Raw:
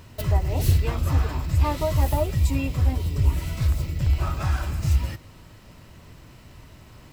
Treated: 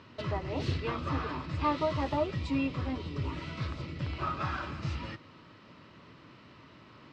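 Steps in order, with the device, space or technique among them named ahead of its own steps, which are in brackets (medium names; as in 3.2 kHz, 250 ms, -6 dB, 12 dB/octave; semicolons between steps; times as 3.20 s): kitchen radio (cabinet simulation 170–4500 Hz, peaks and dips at 290 Hz +3 dB, 730 Hz -5 dB, 1.2 kHz +6 dB); trim -3 dB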